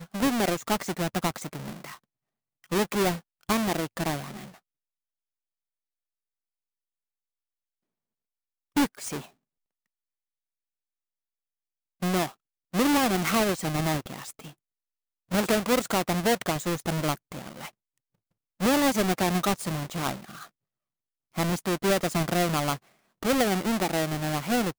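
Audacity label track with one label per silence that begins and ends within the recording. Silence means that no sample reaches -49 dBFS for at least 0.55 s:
1.970000	2.640000	silence
4.570000	8.760000	silence
9.280000	12.020000	silence
14.520000	15.310000	silence
17.700000	18.600000	silence
20.480000	21.350000	silence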